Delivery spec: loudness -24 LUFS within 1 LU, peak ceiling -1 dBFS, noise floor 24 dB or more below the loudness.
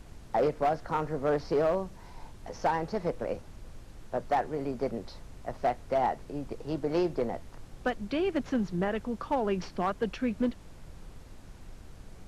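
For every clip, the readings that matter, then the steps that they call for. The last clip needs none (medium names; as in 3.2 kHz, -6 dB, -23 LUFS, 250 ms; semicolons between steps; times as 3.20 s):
clipped samples 0.6%; clipping level -20.5 dBFS; noise floor -50 dBFS; noise floor target -56 dBFS; loudness -31.5 LUFS; peak level -20.5 dBFS; loudness target -24.0 LUFS
-> clip repair -20.5 dBFS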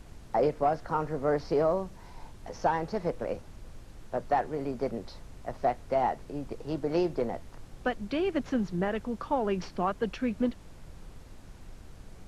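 clipped samples 0.0%; noise floor -50 dBFS; noise floor target -55 dBFS
-> noise print and reduce 6 dB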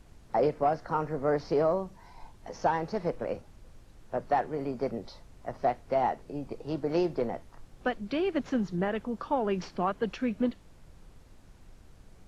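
noise floor -55 dBFS; loudness -31.0 LUFS; peak level -14.5 dBFS; loudness target -24.0 LUFS
-> trim +7 dB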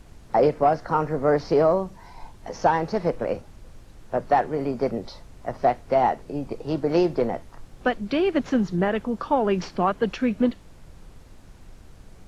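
loudness -24.0 LUFS; peak level -7.5 dBFS; noise floor -48 dBFS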